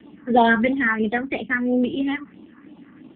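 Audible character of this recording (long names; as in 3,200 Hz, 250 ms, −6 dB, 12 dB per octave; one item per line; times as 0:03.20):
a quantiser's noise floor 12 bits, dither none
phaser sweep stages 4, 3 Hz, lowest notch 620–1,600 Hz
AMR narrowband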